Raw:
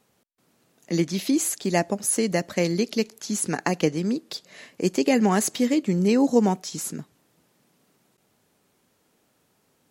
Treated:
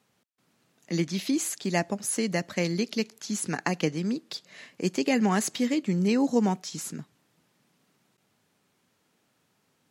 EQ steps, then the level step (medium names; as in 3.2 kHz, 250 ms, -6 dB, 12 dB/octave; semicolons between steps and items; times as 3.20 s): high-pass 100 Hz; peaking EQ 460 Hz -6 dB 2.2 oct; treble shelf 7.5 kHz -9 dB; 0.0 dB